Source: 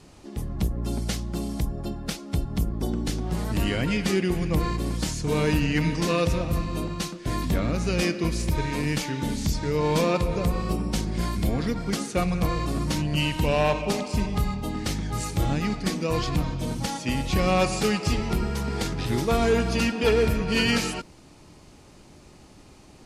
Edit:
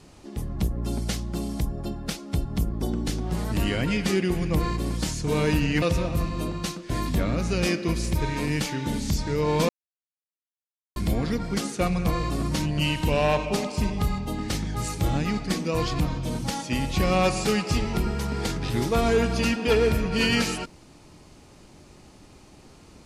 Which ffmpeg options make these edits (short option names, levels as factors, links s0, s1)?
-filter_complex "[0:a]asplit=4[s0][s1][s2][s3];[s0]atrim=end=5.822[s4];[s1]atrim=start=6.178:end=10.05,asetpts=PTS-STARTPTS,afade=t=out:st=3.868:d=0.004:c=hsin[s5];[s2]atrim=start=10.05:end=11.32,asetpts=PTS-STARTPTS,volume=0[s6];[s3]atrim=start=11.32,asetpts=PTS-STARTPTS,afade=t=in:d=0.004:c=hsin[s7];[s5][s6][s7]concat=n=3:v=0:a=1[s8];[s4][s8]acrossfade=d=0.004:c1=hsin:c2=hsin"